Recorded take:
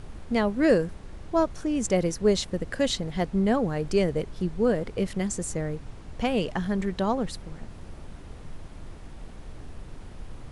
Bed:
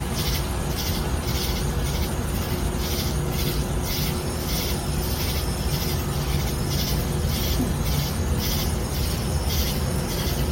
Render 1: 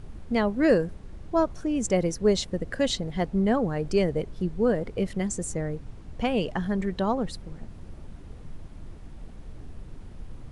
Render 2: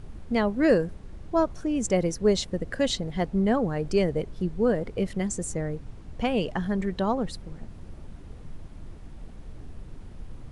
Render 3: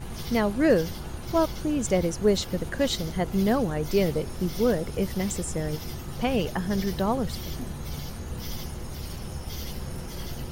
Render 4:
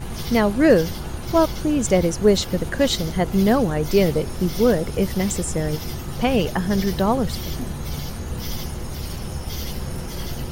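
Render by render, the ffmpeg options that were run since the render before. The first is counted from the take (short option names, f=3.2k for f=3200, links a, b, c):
-af "afftdn=nr=6:nf=-43"
-af anull
-filter_complex "[1:a]volume=-12dB[a];[0:a][a]amix=inputs=2:normalize=0"
-af "volume=6dB"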